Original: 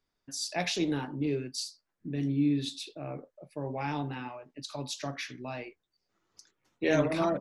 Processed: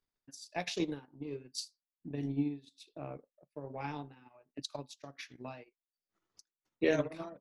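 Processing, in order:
dynamic equaliser 460 Hz, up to +4 dB, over −50 dBFS, Q 5.1
transient designer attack +9 dB, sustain −10 dB
amplitude tremolo 1.3 Hz, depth 76%
level −7.5 dB

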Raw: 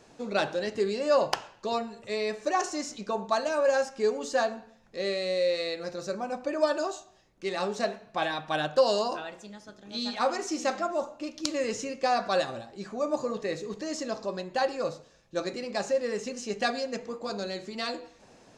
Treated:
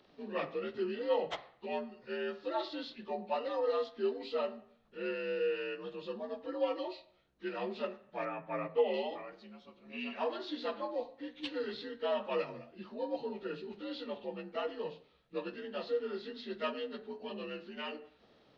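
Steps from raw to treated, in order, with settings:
partials spread apart or drawn together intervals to 85%
0:08.25–0:08.94: low-pass filter 2,300 Hz 12 dB per octave
level −6.5 dB

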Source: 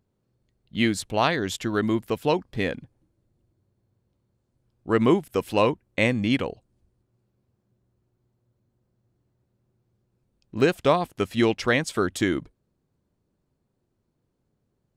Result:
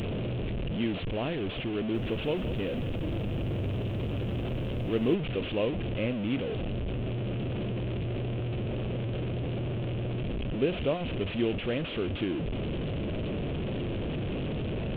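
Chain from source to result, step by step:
linear delta modulator 16 kbit/s, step −18 dBFS
flat-topped bell 1,300 Hz −12 dB
0:01.77–0:05.15: feedback echo at a low word length 174 ms, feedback 35%, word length 8 bits, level −11 dB
level −7 dB

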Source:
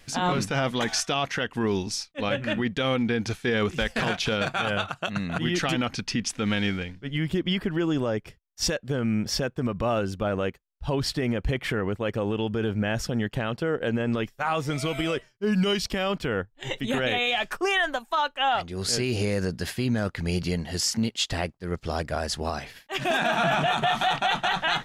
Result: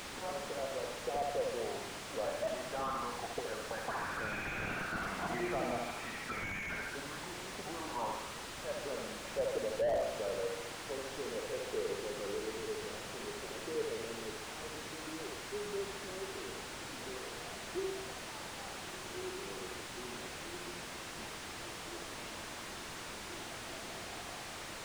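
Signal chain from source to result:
source passing by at 0:05.40, 7 m/s, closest 1.6 metres
parametric band 1,100 Hz +4 dB 0.5 octaves
envelope filter 290–2,300 Hz, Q 6.3, up, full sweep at −37 dBFS
flutter between parallel walls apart 12 metres, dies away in 0.92 s
auto-filter low-pass sine 0.49 Hz 620–2,100 Hz
in parallel at −5 dB: bit-depth reduction 8 bits, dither triangular
on the sum: downsampling to 22,050 Hz
slew-rate limiting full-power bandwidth 3.1 Hz
level +16.5 dB

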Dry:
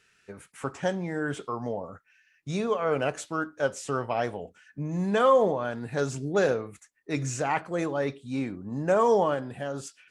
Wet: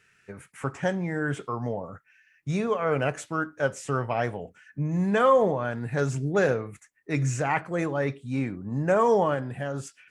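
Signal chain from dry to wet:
octave-band graphic EQ 125/2,000/4,000 Hz +7/+5/−5 dB

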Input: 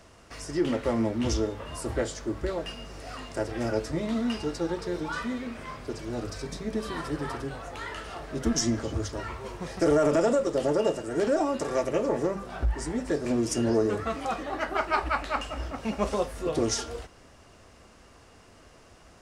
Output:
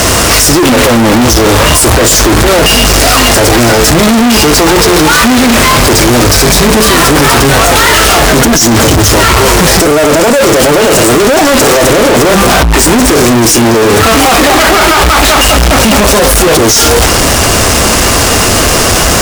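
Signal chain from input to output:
high-shelf EQ 5,800 Hz +11.5 dB
compressor whose output falls as the input rises −30 dBFS, ratio −0.5
fuzz pedal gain 64 dB, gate −58 dBFS
level +8.5 dB

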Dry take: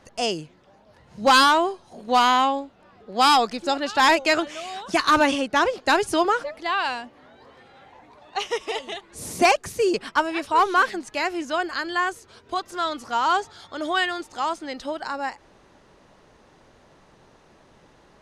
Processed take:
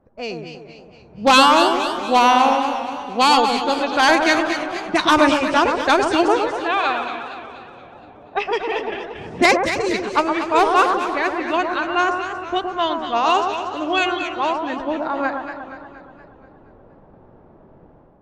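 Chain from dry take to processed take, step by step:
low-pass that shuts in the quiet parts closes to 910 Hz, open at −16 dBFS
automatic gain control gain up to 11.5 dB
formants moved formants −2 semitones
on a send: delay that swaps between a low-pass and a high-pass 115 ms, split 1,500 Hz, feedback 58%, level −5 dB
on the sum: feedback echo with a swinging delay time 237 ms, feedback 54%, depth 132 cents, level −11 dB
level −5 dB

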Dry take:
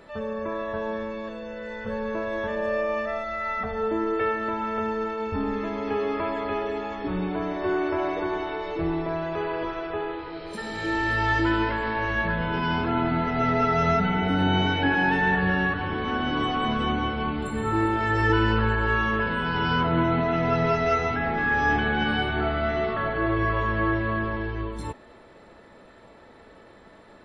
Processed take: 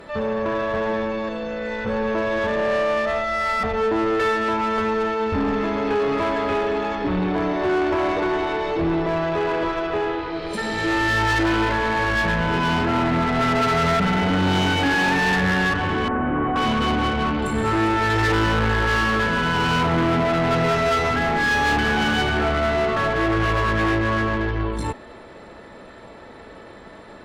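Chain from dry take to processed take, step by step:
soft clipping −25 dBFS, distortion −10 dB
harmonic generator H 2 −15 dB, 6 −31 dB, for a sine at −25 dBFS
0:16.08–0:16.56: Bessel low-pass filter 1,300 Hz, order 6
level +8.5 dB

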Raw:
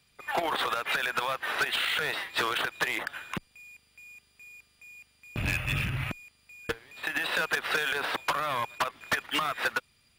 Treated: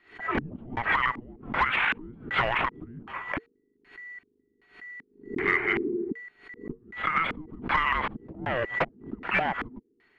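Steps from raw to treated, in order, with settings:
auto-filter low-pass square 1.3 Hz 240–2,400 Hz
frequency shifter −480 Hz
background raised ahead of every attack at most 140 dB per second

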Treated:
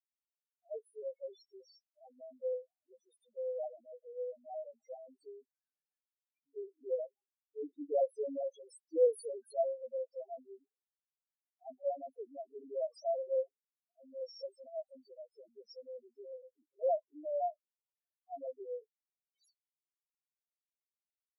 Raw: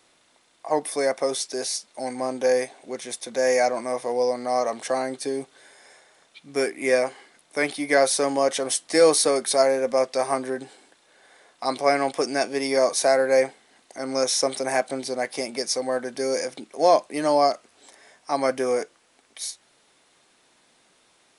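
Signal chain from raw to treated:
0:06.98–0:08.44: tilt shelving filter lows +6 dB, about 850 Hz
power curve on the samples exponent 2
spectral peaks only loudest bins 1

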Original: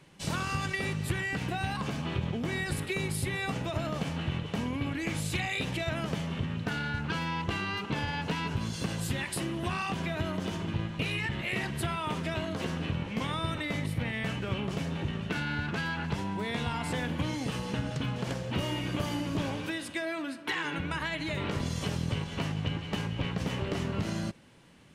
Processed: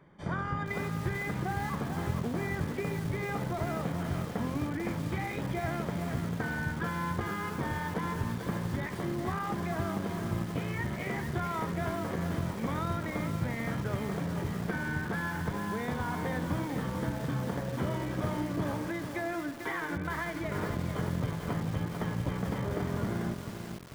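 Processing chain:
Savitzky-Golay smoothing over 41 samples
mains-hum notches 50/100/150/200/250/300 Hz
wrong playback speed 24 fps film run at 25 fps
feedback echo at a low word length 443 ms, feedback 55%, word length 7 bits, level −6 dB

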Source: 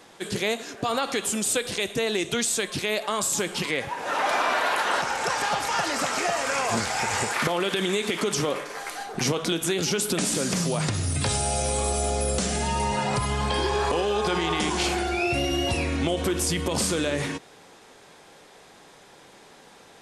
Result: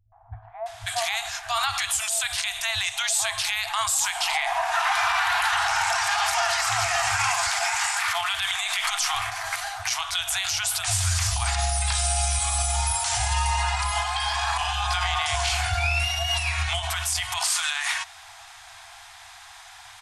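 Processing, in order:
three-band delay without the direct sound lows, mids, highs 120/660 ms, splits 160/790 Hz
brickwall limiter −21.5 dBFS, peak gain reduction 10.5 dB
brick-wall band-stop 110–650 Hz
level +8 dB

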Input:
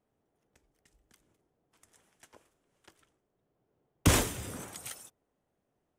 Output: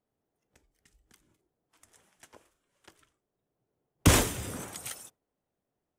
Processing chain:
noise reduction from a noise print of the clip's start 8 dB
level +3 dB

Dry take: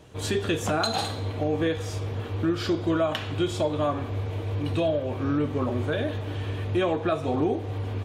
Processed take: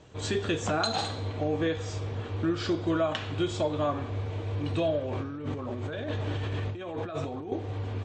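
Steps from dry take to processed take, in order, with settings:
0:05.05–0:07.52: compressor whose output falls as the input rises −31 dBFS, ratio −1
Chebyshev low-pass filter 8,200 Hz, order 10
level −2 dB

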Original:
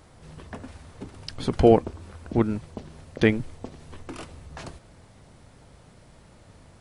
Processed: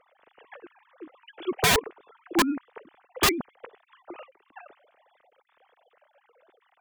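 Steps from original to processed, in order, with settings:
three sine waves on the formant tracks
wrap-around overflow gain 14.5 dB

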